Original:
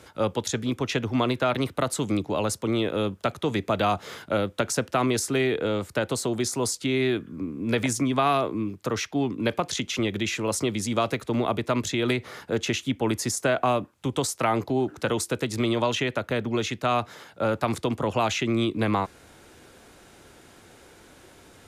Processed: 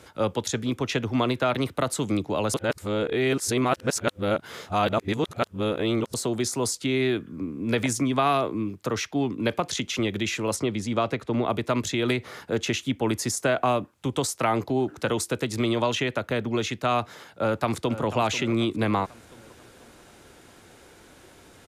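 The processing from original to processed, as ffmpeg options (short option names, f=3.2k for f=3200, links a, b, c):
-filter_complex "[0:a]asettb=1/sr,asplit=3[a][b][c];[a]atrim=end=10.564[d];[b]atrim=start=10.56:end=11.5,asetpts=PTS-STARTPTS,afade=t=in:d=0.004:c=qsin,afade=t=out:st=0.936:d=0.004:c=qsin,aemphasis=mode=reproduction:type=50kf[e];[c]atrim=start=11.496[f];[d][e]acrossfade=d=0.004:c1=hsin:c2=qsin[g];[g][f]acrossfade=d=0.004:c1=qsin:c2=hsin,asplit=2[h][i];[i]afade=t=in:st=17.32:d=0.01,afade=t=out:st=18.05:d=0.01,aecho=0:1:490|980|1470|1960|2450:0.211349|0.105674|0.0528372|0.0264186|0.0132093[j];[h][j]amix=inputs=2:normalize=0,asplit=3[k][l][m];[k]atrim=end=2.542[n];[l]atrim=start=2.538:end=6.142,asetpts=PTS-STARTPTS,areverse[o];[m]atrim=start=6.138[p];[n][o]acrossfade=d=0.004:c1=hsin:c2=hsin[q];[q][p]acrossfade=d=0.004:c1=hsin:c2=hsin"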